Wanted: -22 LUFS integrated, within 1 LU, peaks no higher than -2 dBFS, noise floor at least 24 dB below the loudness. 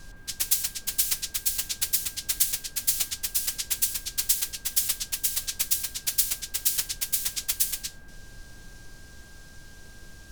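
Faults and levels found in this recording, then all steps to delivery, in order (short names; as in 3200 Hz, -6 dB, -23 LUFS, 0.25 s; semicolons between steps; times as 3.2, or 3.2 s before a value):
steady tone 1600 Hz; tone level -53 dBFS; noise floor -48 dBFS; noise floor target -50 dBFS; loudness -25.5 LUFS; peak -7.0 dBFS; loudness target -22.0 LUFS
-> notch 1600 Hz, Q 30; noise print and reduce 6 dB; gain +3.5 dB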